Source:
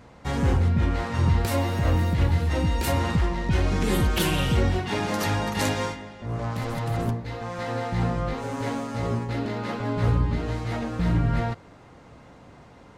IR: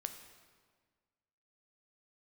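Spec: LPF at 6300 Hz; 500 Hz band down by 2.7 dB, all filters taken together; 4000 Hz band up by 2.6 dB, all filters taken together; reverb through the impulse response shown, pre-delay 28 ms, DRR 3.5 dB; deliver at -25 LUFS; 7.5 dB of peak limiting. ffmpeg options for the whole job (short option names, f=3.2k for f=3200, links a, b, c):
-filter_complex "[0:a]lowpass=6.3k,equalizer=f=500:t=o:g=-3.5,equalizer=f=4k:t=o:g=4,alimiter=limit=-19dB:level=0:latency=1,asplit=2[a][b];[1:a]atrim=start_sample=2205,adelay=28[c];[b][c]afir=irnorm=-1:irlink=0,volume=-1.5dB[d];[a][d]amix=inputs=2:normalize=0,volume=3dB"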